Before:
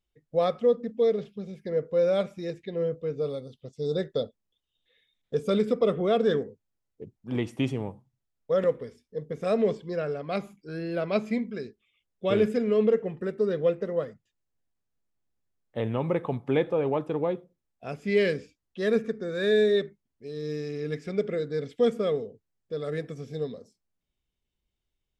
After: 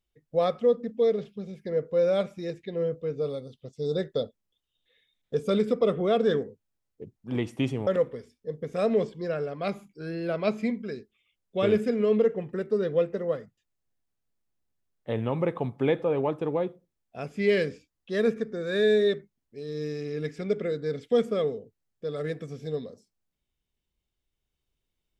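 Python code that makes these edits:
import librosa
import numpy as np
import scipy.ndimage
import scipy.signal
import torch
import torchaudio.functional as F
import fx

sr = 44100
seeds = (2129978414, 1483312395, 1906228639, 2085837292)

y = fx.edit(x, sr, fx.cut(start_s=7.87, length_s=0.68), tone=tone)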